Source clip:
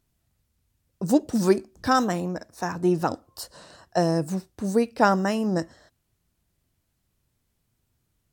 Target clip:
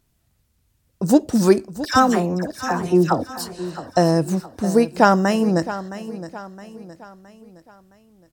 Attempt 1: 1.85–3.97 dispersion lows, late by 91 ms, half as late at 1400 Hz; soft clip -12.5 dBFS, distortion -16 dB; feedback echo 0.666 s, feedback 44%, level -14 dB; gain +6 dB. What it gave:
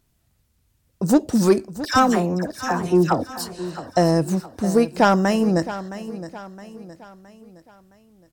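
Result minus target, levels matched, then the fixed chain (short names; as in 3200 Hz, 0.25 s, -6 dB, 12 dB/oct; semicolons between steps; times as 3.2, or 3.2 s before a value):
soft clip: distortion +12 dB
1.85–3.97 dispersion lows, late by 91 ms, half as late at 1400 Hz; soft clip -4.5 dBFS, distortion -29 dB; feedback echo 0.666 s, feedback 44%, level -14 dB; gain +6 dB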